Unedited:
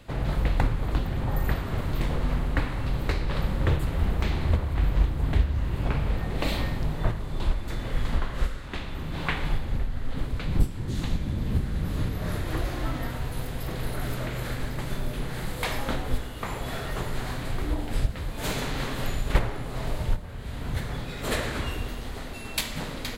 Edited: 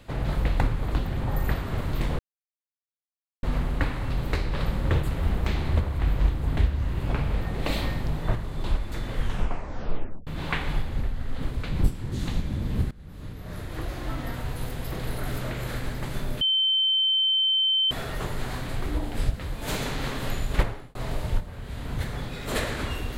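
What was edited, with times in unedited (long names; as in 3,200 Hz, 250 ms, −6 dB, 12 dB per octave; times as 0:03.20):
0:02.19: splice in silence 1.24 s
0:07.94: tape stop 1.09 s
0:11.67–0:13.23: fade in, from −21.5 dB
0:15.17–0:16.67: beep over 3,090 Hz −19.5 dBFS
0:19.34–0:19.71: fade out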